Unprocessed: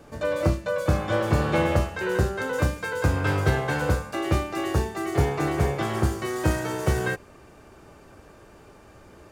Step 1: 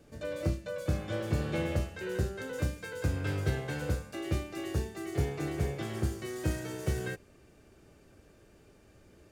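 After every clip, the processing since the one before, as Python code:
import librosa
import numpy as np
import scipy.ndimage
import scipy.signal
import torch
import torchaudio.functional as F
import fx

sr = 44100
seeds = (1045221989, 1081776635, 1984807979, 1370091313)

y = fx.peak_eq(x, sr, hz=1000.0, db=-10.5, octaves=1.2)
y = F.gain(torch.from_numpy(y), -7.5).numpy()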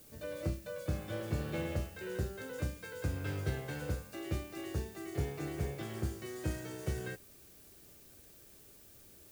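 y = fx.dmg_noise_colour(x, sr, seeds[0], colour='blue', level_db=-54.0)
y = F.gain(torch.from_numpy(y), -5.0).numpy()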